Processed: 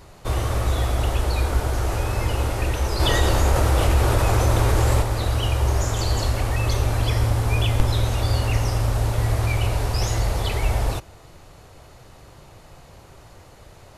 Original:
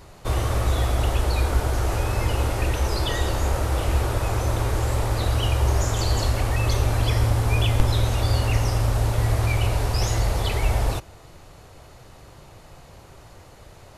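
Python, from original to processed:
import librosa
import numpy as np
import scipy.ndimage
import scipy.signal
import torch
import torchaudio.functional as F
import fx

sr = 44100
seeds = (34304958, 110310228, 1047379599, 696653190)

y = fx.env_flatten(x, sr, amount_pct=50, at=(2.99, 5.01), fade=0.02)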